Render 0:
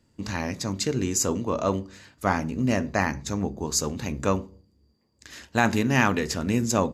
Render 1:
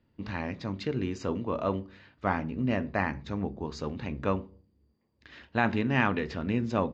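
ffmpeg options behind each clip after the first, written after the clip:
ffmpeg -i in.wav -af "lowpass=frequency=3600:width=0.5412,lowpass=frequency=3600:width=1.3066,volume=-4.5dB" out.wav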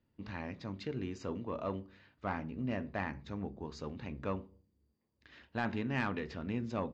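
ffmpeg -i in.wav -af "asoftclip=type=tanh:threshold=-15.5dB,volume=-7.5dB" out.wav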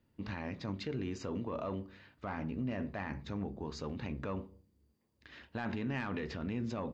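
ffmpeg -i in.wav -af "alimiter=level_in=9dB:limit=-24dB:level=0:latency=1:release=25,volume=-9dB,volume=4dB" out.wav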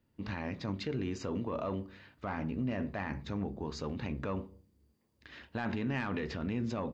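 ffmpeg -i in.wav -af "dynaudnorm=framelen=130:gausssize=3:maxgain=4dB,volume=-1.5dB" out.wav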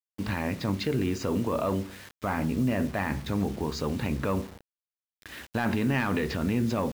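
ffmpeg -i in.wav -af "acrusher=bits=8:mix=0:aa=0.000001,volume=8dB" out.wav

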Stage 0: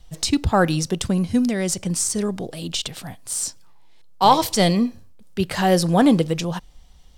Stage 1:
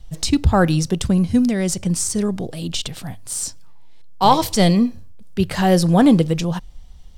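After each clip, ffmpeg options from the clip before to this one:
ffmpeg -i in.wav -af "lowshelf=frequency=170:gain=9.5,bandreject=frequency=50:width_type=h:width=6,bandreject=frequency=100:width_type=h:width=6" out.wav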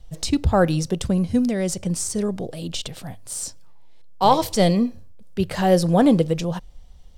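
ffmpeg -i in.wav -af "equalizer=frequency=540:width_type=o:width=0.85:gain=6,volume=-4.5dB" out.wav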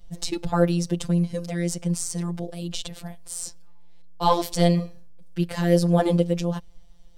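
ffmpeg -i in.wav -af "afftfilt=real='hypot(re,im)*cos(PI*b)':imag='0':win_size=1024:overlap=0.75" out.wav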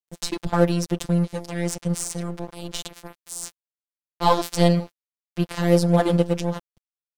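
ffmpeg -i in.wav -af "aeval=exprs='sgn(val(0))*max(abs(val(0))-0.0211,0)':channel_layout=same,volume=2.5dB" out.wav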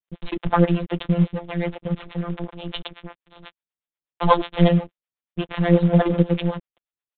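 ffmpeg -i in.wav -filter_complex "[0:a]acrossover=split=410[link_01][link_02];[link_01]aeval=exprs='val(0)*(1-1/2+1/2*cos(2*PI*8.2*n/s))':channel_layout=same[link_03];[link_02]aeval=exprs='val(0)*(1-1/2-1/2*cos(2*PI*8.2*n/s))':channel_layout=same[link_04];[link_03][link_04]amix=inputs=2:normalize=0,asplit=2[link_05][link_06];[link_06]acrusher=bits=3:mode=log:mix=0:aa=0.000001,volume=-6.5dB[link_07];[link_05][link_07]amix=inputs=2:normalize=0,aresample=8000,aresample=44100,volume=3dB" out.wav

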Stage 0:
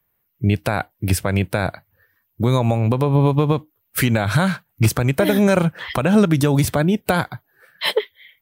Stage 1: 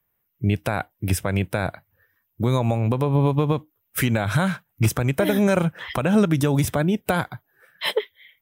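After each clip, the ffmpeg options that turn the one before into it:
ffmpeg -i in.wav -af "bandreject=frequency=4400:width=6.1,volume=-3.5dB" out.wav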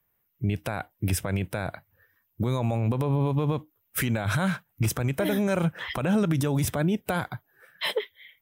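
ffmpeg -i in.wav -af "alimiter=limit=-17dB:level=0:latency=1:release=43" out.wav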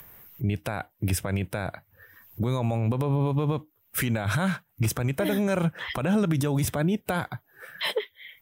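ffmpeg -i in.wav -af "acompressor=mode=upward:threshold=-30dB:ratio=2.5" out.wav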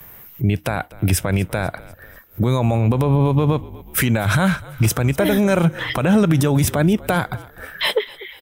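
ffmpeg -i in.wav -filter_complex "[0:a]asplit=5[link_01][link_02][link_03][link_04][link_05];[link_02]adelay=246,afreqshift=-45,volume=-20dB[link_06];[link_03]adelay=492,afreqshift=-90,volume=-25.8dB[link_07];[link_04]adelay=738,afreqshift=-135,volume=-31.7dB[link_08];[link_05]adelay=984,afreqshift=-180,volume=-37.5dB[link_09];[link_01][link_06][link_07][link_08][link_09]amix=inputs=5:normalize=0,agate=range=-11dB:threshold=-51dB:ratio=16:detection=peak,volume=8.5dB" out.wav

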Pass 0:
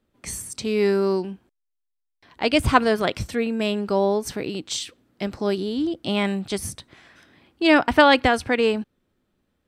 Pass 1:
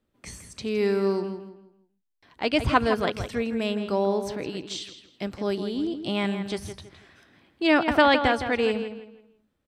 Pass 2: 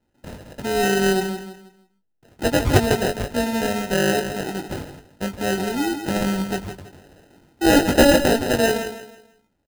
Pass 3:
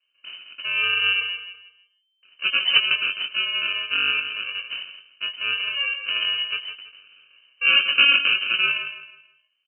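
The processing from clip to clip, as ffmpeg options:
ffmpeg -i in.wav -filter_complex "[0:a]acrossover=split=5800[link_01][link_02];[link_02]acompressor=threshold=-47dB:ratio=6[link_03];[link_01][link_03]amix=inputs=2:normalize=0,asplit=2[link_04][link_05];[link_05]adelay=163,lowpass=frequency=4100:poles=1,volume=-9dB,asplit=2[link_06][link_07];[link_07]adelay=163,lowpass=frequency=4100:poles=1,volume=0.32,asplit=2[link_08][link_09];[link_09]adelay=163,lowpass=frequency=4100:poles=1,volume=0.32,asplit=2[link_10][link_11];[link_11]adelay=163,lowpass=frequency=4100:poles=1,volume=0.32[link_12];[link_04][link_06][link_08][link_10][link_12]amix=inputs=5:normalize=0,volume=-4dB" out.wav
ffmpeg -i in.wav -filter_complex "[0:a]acrusher=samples=39:mix=1:aa=0.000001,asplit=2[link_01][link_02];[link_02]adelay=21,volume=-7dB[link_03];[link_01][link_03]amix=inputs=2:normalize=0,volume=4dB" out.wav
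ffmpeg -i in.wav -af "lowpass=frequency=2600:width_type=q:width=0.5098,lowpass=frequency=2600:width_type=q:width=0.6013,lowpass=frequency=2600:width_type=q:width=0.9,lowpass=frequency=2600:width_type=q:width=2.563,afreqshift=-3100,crystalizer=i=2.5:c=0,volume=-6dB" out.wav

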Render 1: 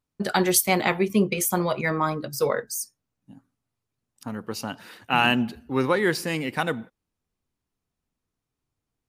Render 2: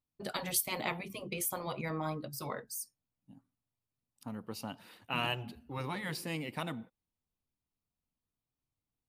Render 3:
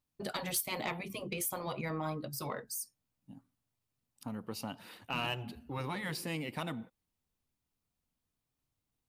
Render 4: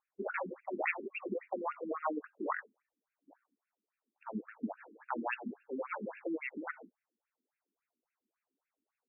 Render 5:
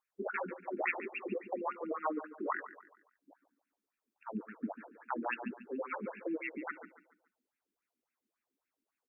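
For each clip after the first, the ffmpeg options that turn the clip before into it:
ffmpeg -i in.wav -af "afftfilt=real='re*lt(hypot(re,im),0.398)':imag='im*lt(hypot(re,im),0.398)':win_size=1024:overlap=0.75,equalizer=frequency=400:width_type=o:width=0.67:gain=-4,equalizer=frequency=1600:width_type=o:width=0.67:gain=-7,equalizer=frequency=6300:width_type=o:width=0.67:gain=-6,volume=-8dB" out.wav
ffmpeg -i in.wav -filter_complex "[0:a]asplit=2[link_01][link_02];[link_02]acompressor=threshold=-44dB:ratio=6,volume=1.5dB[link_03];[link_01][link_03]amix=inputs=2:normalize=0,asoftclip=type=tanh:threshold=-21.5dB,volume=-2.5dB" out.wav
ffmpeg -i in.wav -af "afftfilt=real='re*between(b*sr/1024,280*pow(2000/280,0.5+0.5*sin(2*PI*3.6*pts/sr))/1.41,280*pow(2000/280,0.5+0.5*sin(2*PI*3.6*pts/sr))*1.41)':imag='im*between(b*sr/1024,280*pow(2000/280,0.5+0.5*sin(2*PI*3.6*pts/sr))/1.41,280*pow(2000/280,0.5+0.5*sin(2*PI*3.6*pts/sr))*1.41)':win_size=1024:overlap=0.75,volume=8dB" out.wav
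ffmpeg -i in.wav -af "aecho=1:1:142|284|426|568:0.2|0.0778|0.0303|0.0118" out.wav

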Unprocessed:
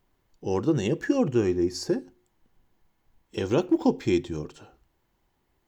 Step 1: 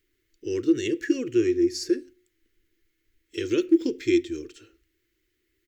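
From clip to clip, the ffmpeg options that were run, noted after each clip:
ffmpeg -i in.wav -af "firequalizer=gain_entry='entry(110,0);entry(160,-17);entry(330,11);entry(790,-26);entry(1300,-1);entry(2000,11);entry(2900,8)':delay=0.05:min_phase=1,volume=-6dB" out.wav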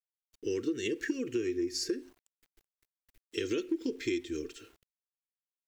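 ffmpeg -i in.wav -af "aecho=1:1:4.4:0.4,acompressor=threshold=-29dB:ratio=6,aeval=exprs='val(0)*gte(abs(val(0)),0.00106)':channel_layout=same" out.wav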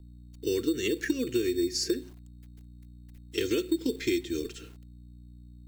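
ffmpeg -i in.wav -filter_complex "[0:a]aeval=exprs='val(0)+0.00251*(sin(2*PI*60*n/s)+sin(2*PI*2*60*n/s)/2+sin(2*PI*3*60*n/s)/3+sin(2*PI*4*60*n/s)/4+sin(2*PI*5*60*n/s)/5)':channel_layout=same,acrossover=split=220|1300|1600[link_01][link_02][link_03][link_04];[link_02]acrusher=samples=11:mix=1:aa=0.000001[link_05];[link_01][link_05][link_03][link_04]amix=inputs=4:normalize=0,volume=4.5dB" out.wav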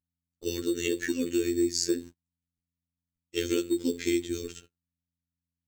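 ffmpeg -i in.wav -af "superequalizer=8b=0.631:15b=1.78,agate=range=-38dB:threshold=-41dB:ratio=16:detection=peak,afftfilt=real='hypot(re,im)*cos(PI*b)':imag='0':win_size=2048:overlap=0.75,volume=3dB" out.wav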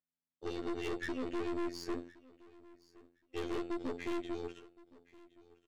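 ffmpeg -i in.wav -af "highpass=310,lowpass=2400,aeval=exprs='(tanh(63.1*val(0)+0.65)-tanh(0.65))/63.1':channel_layout=same,aecho=1:1:1068|2136:0.0794|0.0135,volume=1.5dB" out.wav

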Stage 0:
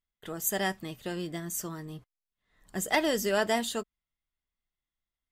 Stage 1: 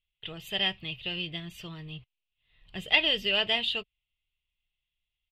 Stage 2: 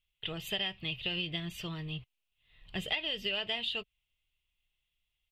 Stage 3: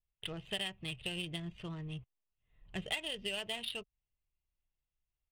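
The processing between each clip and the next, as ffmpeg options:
ffmpeg -i in.wav -af "firequalizer=gain_entry='entry(130,0);entry(230,-15);entry(430,-10);entry(1600,-12);entry(2700,13);entry(6400,-26)':delay=0.05:min_phase=1,volume=4.5dB" out.wav
ffmpeg -i in.wav -af "acompressor=threshold=-33dB:ratio=12,volume=2.5dB" out.wav
ffmpeg -i in.wav -af "adynamicsmooth=sensitivity=6.5:basefreq=1200,adynamicequalizer=threshold=0.00282:dfrequency=1600:dqfactor=0.86:tfrequency=1600:tqfactor=0.86:attack=5:release=100:ratio=0.375:range=2:mode=cutabove:tftype=bell,volume=-2.5dB" out.wav

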